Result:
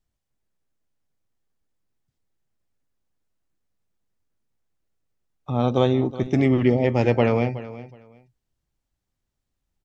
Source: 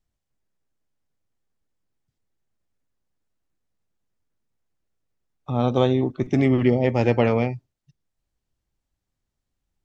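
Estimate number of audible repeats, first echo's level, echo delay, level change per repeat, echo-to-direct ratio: 2, -16.0 dB, 370 ms, -14.0 dB, -16.0 dB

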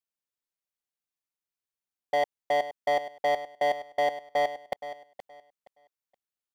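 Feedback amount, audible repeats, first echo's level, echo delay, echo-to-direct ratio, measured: 23%, 2, -13.0 dB, 471 ms, -13.0 dB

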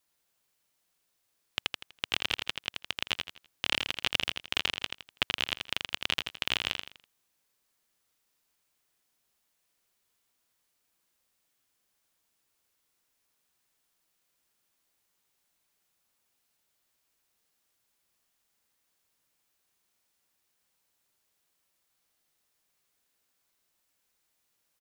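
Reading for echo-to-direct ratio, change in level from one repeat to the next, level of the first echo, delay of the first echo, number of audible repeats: -4.5 dB, -9.5 dB, -5.0 dB, 82 ms, 4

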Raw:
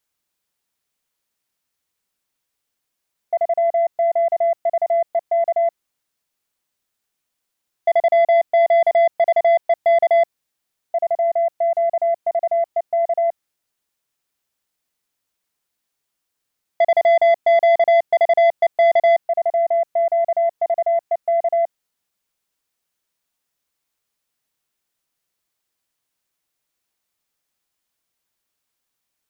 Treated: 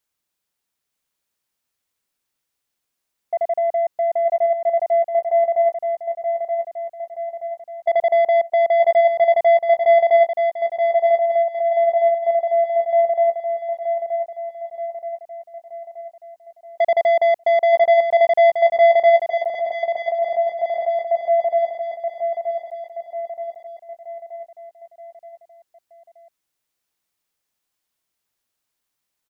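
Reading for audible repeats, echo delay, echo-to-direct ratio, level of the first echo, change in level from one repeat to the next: 5, 926 ms, -4.5 dB, -6.0 dB, -5.5 dB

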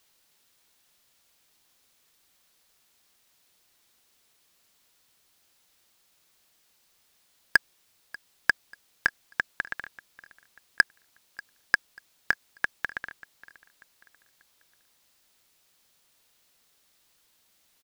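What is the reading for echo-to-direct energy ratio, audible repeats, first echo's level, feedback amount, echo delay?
-21.0 dB, 2, -21.5 dB, 40%, 589 ms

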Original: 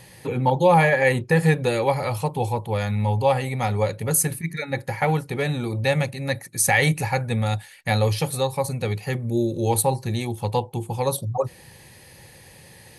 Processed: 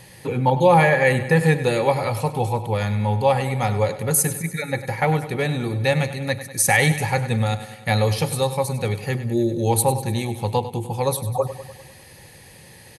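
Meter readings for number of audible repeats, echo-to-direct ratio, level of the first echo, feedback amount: 5, -11.0 dB, -13.0 dB, 60%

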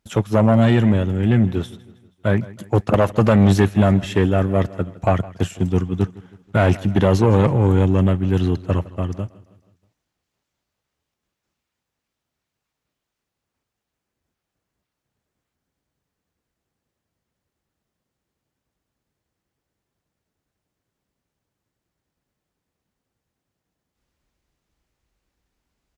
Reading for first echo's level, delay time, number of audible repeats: -20.0 dB, 160 ms, 3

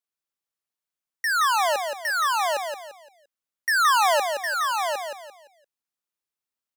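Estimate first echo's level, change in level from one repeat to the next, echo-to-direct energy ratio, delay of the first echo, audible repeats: -5.5 dB, -9.5 dB, -5.0 dB, 172 ms, 4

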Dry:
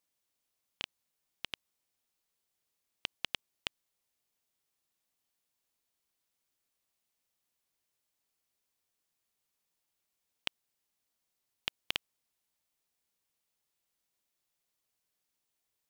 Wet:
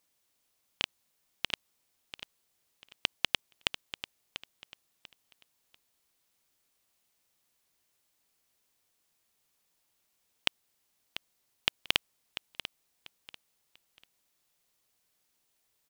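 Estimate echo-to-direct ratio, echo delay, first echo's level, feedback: -11.0 dB, 692 ms, -11.5 dB, 27%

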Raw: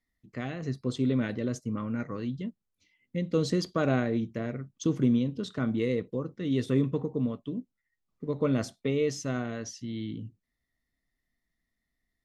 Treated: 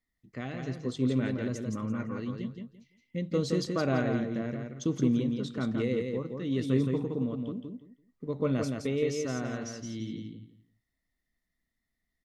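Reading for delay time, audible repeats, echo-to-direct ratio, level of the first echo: 169 ms, 3, -4.5 dB, -4.5 dB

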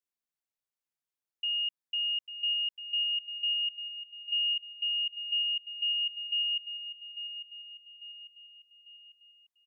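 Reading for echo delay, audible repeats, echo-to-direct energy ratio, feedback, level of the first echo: 847 ms, 4, -10.0 dB, 47%, -11.0 dB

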